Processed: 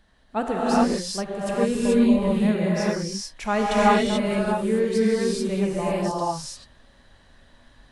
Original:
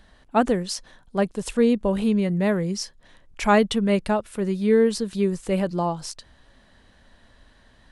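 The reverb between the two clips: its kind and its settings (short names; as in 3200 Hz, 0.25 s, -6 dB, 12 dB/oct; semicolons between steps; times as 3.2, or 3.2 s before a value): non-linear reverb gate 0.46 s rising, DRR -7.5 dB; gain -7 dB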